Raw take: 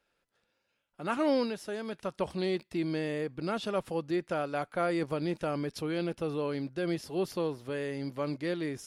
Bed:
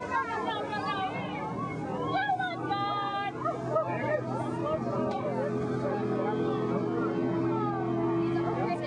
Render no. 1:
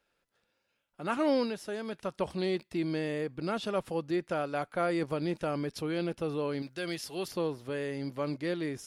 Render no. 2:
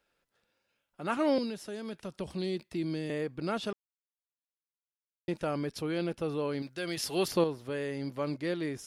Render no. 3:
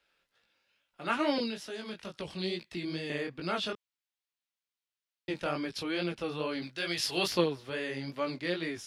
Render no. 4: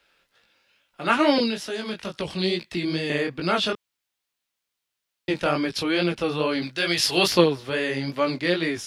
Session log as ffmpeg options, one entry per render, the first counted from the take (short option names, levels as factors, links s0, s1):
-filter_complex "[0:a]asettb=1/sr,asplit=3[s0][s1][s2];[s0]atrim=end=6.624[s3];[s1]atrim=start=6.62:end=7.28,asetpts=PTS-STARTPTS,afade=t=in:d=0.004:c=qsin,afade=t=out:st=0.656:d=0.004:c=qsin,tiltshelf=f=1200:g=-6.5[s4];[s2]atrim=start=7.276[s5];[s3][s4]acrossfade=d=0.004:c1=hsin:c2=qsin[s6];[s6][s5]acrossfade=d=0.004:c1=qsin:c2=hsin"
-filter_complex "[0:a]asettb=1/sr,asplit=3[s0][s1][s2];[s0]atrim=end=1.384[s3];[s1]atrim=start=1.38:end=3.1,asetpts=PTS-STARTPTS,afade=t=in:d=0.004:c=qsin,afade=t=out:st=1.716:d=0.004:c=qsin,acrossover=split=390|3000[s4][s5][s6];[s5]acompressor=threshold=0.00631:ratio=6:attack=3.2:release=140:knee=2.83:detection=peak[s7];[s4][s7][s6]amix=inputs=3:normalize=0[s8];[s2]atrim=start=3.096[s9];[s3][s8]acrossfade=d=0.004:c1=hsin:c2=qsin[s10];[s10][s9]acrossfade=d=0.004:c1=qsin:c2=hsin,asettb=1/sr,asplit=3[s11][s12][s13];[s11]atrim=end=6.974[s14];[s12]atrim=start=6.97:end=7.44,asetpts=PTS-STARTPTS,afade=t=in:d=0.004:c=qsin,afade=t=out:st=0.466:d=0.004:c=qsin,acontrast=61[s15];[s13]atrim=start=7.436[s16];[s14][s15]acrossfade=d=0.004:c1=hsin:c2=qsin[s17];[s17][s16]acrossfade=d=0.004:c1=qsin:c2=hsin,asplit=3[s18][s19][s20];[s18]atrim=end=3.73,asetpts=PTS-STARTPTS,afade=t=out:st=3.726:d=0.004:c=hsin[s21];[s19]atrim=start=3.73:end=5.28,asetpts=PTS-STARTPTS,volume=0[s22];[s20]atrim=start=5.28,asetpts=PTS-STARTPTS,afade=t=in:d=0.004:c=hsin[s23];[s21][s22][s23]concat=n=3:v=0:a=1"
-filter_complex "[0:a]flanger=delay=17:depth=5.9:speed=2.3,acrossover=split=170|4200[s0][s1][s2];[s1]crystalizer=i=8:c=0[s3];[s0][s3][s2]amix=inputs=3:normalize=0"
-af "volume=3.16"